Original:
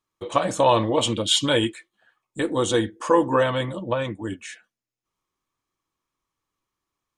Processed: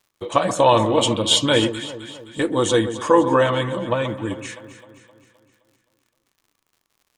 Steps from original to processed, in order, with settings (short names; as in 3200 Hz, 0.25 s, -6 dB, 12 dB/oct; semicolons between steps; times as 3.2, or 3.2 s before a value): echo with dull and thin repeats by turns 0.13 s, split 1300 Hz, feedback 71%, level -10.5 dB; crackle 81/s -50 dBFS; gain +3 dB